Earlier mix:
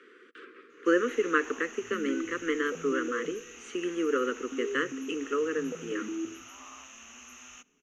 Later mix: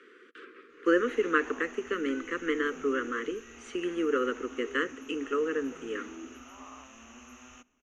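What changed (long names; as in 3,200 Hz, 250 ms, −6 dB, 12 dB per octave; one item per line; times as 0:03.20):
first sound: add tilt shelving filter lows +7.5 dB, about 1,300 Hz
second sound −11.0 dB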